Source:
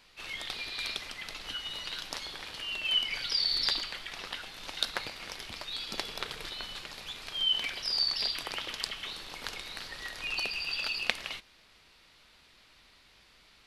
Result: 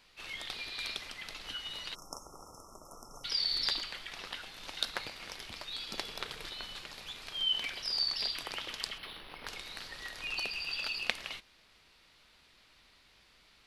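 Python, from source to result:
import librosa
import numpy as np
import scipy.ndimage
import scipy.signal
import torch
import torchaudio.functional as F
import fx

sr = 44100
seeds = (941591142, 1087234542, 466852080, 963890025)

y = fx.spec_erase(x, sr, start_s=1.94, length_s=1.3, low_hz=1400.0, high_hz=5200.0)
y = fx.resample_linear(y, sr, factor=6, at=(8.98, 9.47))
y = y * 10.0 ** (-3.0 / 20.0)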